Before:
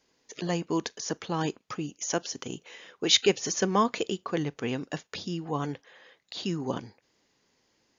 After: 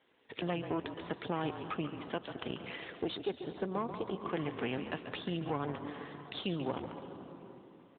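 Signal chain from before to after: bass shelf 180 Hz -9 dB; on a send at -13.5 dB: reverberation RT60 3.6 s, pre-delay 123 ms; on the sum: compression 3:1, threshold -40 dBFS, peak gain reduction 17.5 dB; Chebyshev shaper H 2 -33 dB, 7 -31 dB, 8 -20 dB, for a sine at -22.5 dBFS; 2.92–4.28 s: peaking EQ 2.4 kHz -11 dB 1.4 oct; hum notches 50/100 Hz; frequency-shifting echo 139 ms, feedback 34%, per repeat -42 Hz, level -10 dB; in parallel at -7 dB: hard clipper -34.5 dBFS, distortion -11 dB; on the sum: trim +2.5 dB; AMR-NB 12.2 kbps 8 kHz

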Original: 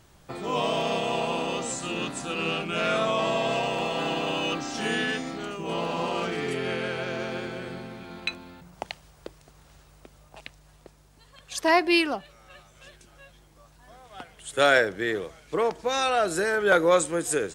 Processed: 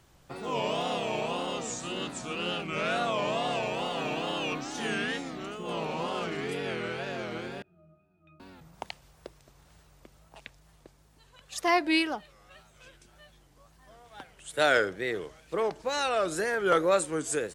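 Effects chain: wow and flutter 140 cents; 7.62–8.40 s: pitch-class resonator D#, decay 0.54 s; trim -4 dB

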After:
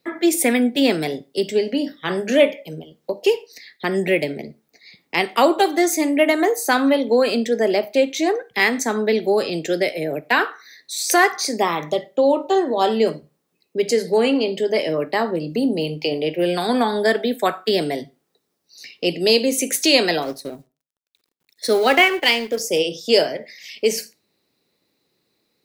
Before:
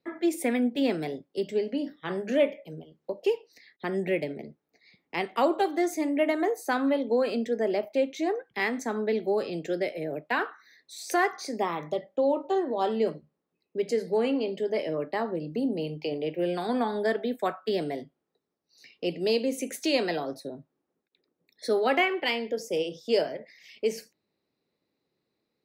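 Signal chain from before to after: 20.22–22.61 s: companding laws mixed up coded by A; treble shelf 2.7 kHz +10 dB; reverberation RT60 0.30 s, pre-delay 42 ms, DRR 22 dB; trim +8 dB

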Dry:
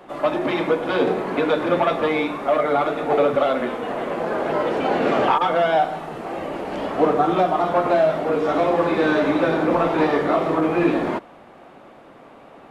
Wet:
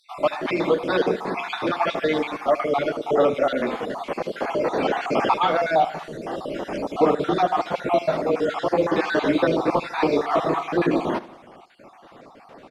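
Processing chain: random holes in the spectrogram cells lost 42%; peaking EQ 5.1 kHz +7.5 dB 0.96 oct; feedback delay 76 ms, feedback 49%, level -17.5 dB

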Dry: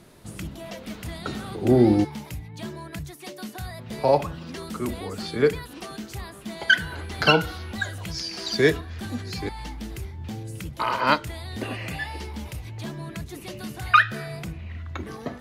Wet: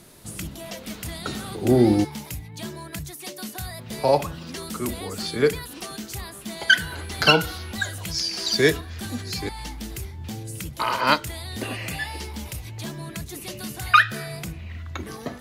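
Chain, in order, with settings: treble shelf 4.4 kHz +10.5 dB

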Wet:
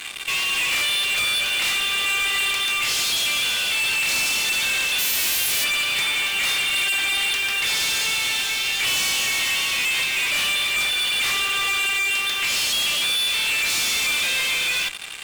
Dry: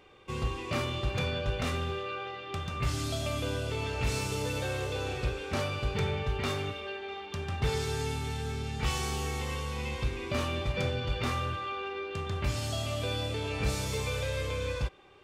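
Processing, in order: 4.98–5.63 s: formants flattened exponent 0.1; in parallel at -1.5 dB: compressor with a negative ratio -42 dBFS, ratio -1; on the sum: resonant high-pass 2.5 kHz, resonance Q 1.7; fuzz box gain 45 dB, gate -49 dBFS; trim -7 dB

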